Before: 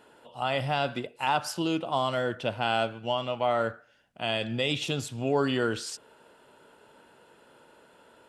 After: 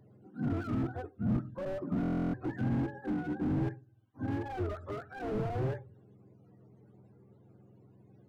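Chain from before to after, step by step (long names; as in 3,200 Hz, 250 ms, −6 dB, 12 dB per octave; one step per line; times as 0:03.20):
frequency axis turned over on the octave scale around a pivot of 430 Hz
buffer that repeats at 0:02.01, samples 1,024, times 13
slew-rate limiting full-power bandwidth 13 Hz
level −2.5 dB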